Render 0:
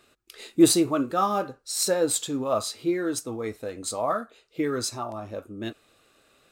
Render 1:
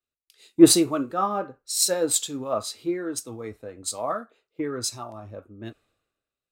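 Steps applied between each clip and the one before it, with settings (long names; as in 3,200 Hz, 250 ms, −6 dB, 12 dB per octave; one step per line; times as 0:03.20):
in parallel at +2 dB: downward compressor, threshold −32 dBFS, peak gain reduction 19.5 dB
on the sum: multiband upward and downward expander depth 100%
level −5.5 dB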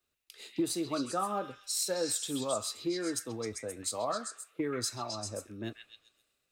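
downward compressor 10 to 1, threshold −24 dBFS, peak gain reduction 17.5 dB
echo through a band-pass that steps 131 ms, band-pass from 2,500 Hz, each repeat 0.7 octaves, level −2 dB
multiband upward and downward compressor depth 40%
level −3.5 dB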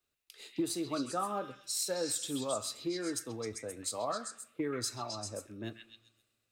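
convolution reverb RT60 0.85 s, pre-delay 7 ms, DRR 19 dB
level −2 dB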